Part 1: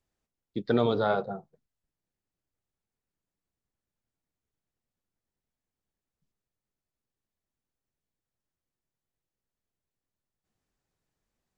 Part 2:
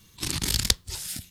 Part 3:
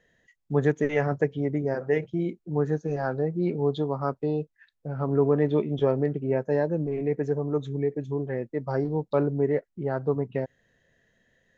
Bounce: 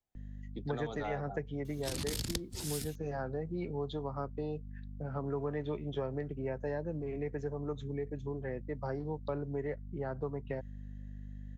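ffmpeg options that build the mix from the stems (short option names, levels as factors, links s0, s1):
-filter_complex "[0:a]equalizer=f=750:t=o:w=0.35:g=9,volume=0.316,asplit=2[s0][s1];[1:a]adelay=1650,volume=1.41[s2];[2:a]aeval=exprs='val(0)+0.0141*(sin(2*PI*50*n/s)+sin(2*PI*2*50*n/s)/2+sin(2*PI*3*50*n/s)/3+sin(2*PI*4*50*n/s)/4+sin(2*PI*5*50*n/s)/5)':c=same,adelay=150,volume=0.531[s3];[s1]apad=whole_len=130283[s4];[s2][s4]sidechaincompress=threshold=0.00316:ratio=4:attack=16:release=706[s5];[s0][s5][s3]amix=inputs=3:normalize=0,acrossover=split=160|640[s6][s7][s8];[s6]acompressor=threshold=0.00794:ratio=4[s9];[s7]acompressor=threshold=0.0112:ratio=4[s10];[s8]acompressor=threshold=0.01:ratio=4[s11];[s9][s10][s11]amix=inputs=3:normalize=0"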